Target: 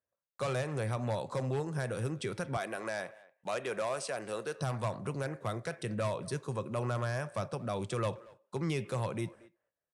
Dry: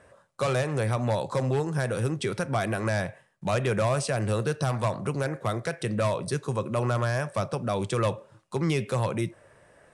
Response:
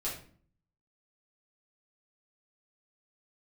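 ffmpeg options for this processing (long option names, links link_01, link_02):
-filter_complex "[0:a]asettb=1/sr,asplit=3[link_01][link_02][link_03];[link_01]atrim=end=2.574[link_04];[link_02]atrim=start=2.57:end=4.59,asetpts=PTS-STARTPTS,afade=type=in:duration=0.004:curve=qsin,afade=type=out:start_time=2.016:duration=0.004:curve=qsin,highpass=330[link_05];[link_03]atrim=start=4.586[link_06];[link_04][link_05]acrossfade=duration=0.004:curve1=hsin:curve2=qsin[link_07];[link_07][link_06]acrossfade=duration=0.004:curve1=qsin:curve2=hsin,agate=range=-31dB:threshold=-49dB:ratio=16:detection=peak,asplit=2[link_08][link_09];[link_09]adelay=230,highpass=300,lowpass=3400,asoftclip=type=hard:threshold=-23dB,volume=-20dB[link_10];[link_08][link_10]amix=inputs=2:normalize=0,volume=-7.5dB"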